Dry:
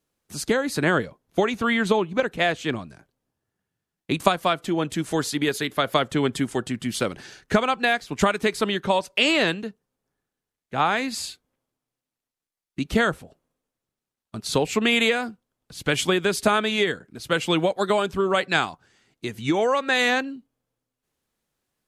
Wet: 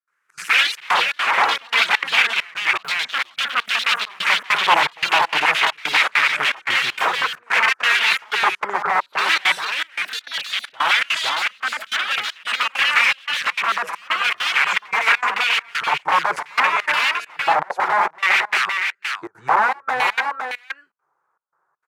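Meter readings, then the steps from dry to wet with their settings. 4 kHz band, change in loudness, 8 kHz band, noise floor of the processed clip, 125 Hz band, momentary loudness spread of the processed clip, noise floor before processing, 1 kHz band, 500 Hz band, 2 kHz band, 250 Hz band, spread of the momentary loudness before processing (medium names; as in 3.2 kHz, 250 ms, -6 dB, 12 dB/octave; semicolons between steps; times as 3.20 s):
+7.5 dB, +5.0 dB, +1.0 dB, -70 dBFS, under -15 dB, 7 LU, under -85 dBFS, +7.5 dB, -8.0 dB, +9.5 dB, -17.0 dB, 13 LU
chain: FFT filter 110 Hz 0 dB, 160 Hz +9 dB, 240 Hz -15 dB, 340 Hz +5 dB, 500 Hz +4 dB, 780 Hz -2 dB, 1.4 kHz +10 dB, 2.1 kHz -7 dB, 3.1 kHz -12 dB, 6.8 kHz +5 dB; in parallel at +1 dB: compression 8:1, threshold -29 dBFS, peak gain reduction 19 dB; on the sum: integer overflow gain 13.5 dB; LFO band-pass square 0.55 Hz 800–2500 Hz; high-pass 55 Hz; high-order bell 1.4 kHz +10.5 dB; on a send: delay 511 ms -5.5 dB; on the sum: ever faster or slower copies 118 ms, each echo +3 st, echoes 3; trance gate ".xxx.xxxxx." 200 bpm -24 dB; warped record 33 1/3 rpm, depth 100 cents; trim +2.5 dB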